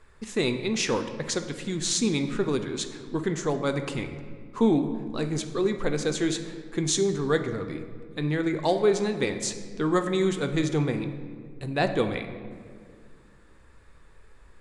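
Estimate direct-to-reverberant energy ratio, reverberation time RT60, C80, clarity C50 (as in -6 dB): 7.0 dB, 2.0 s, 11.0 dB, 9.5 dB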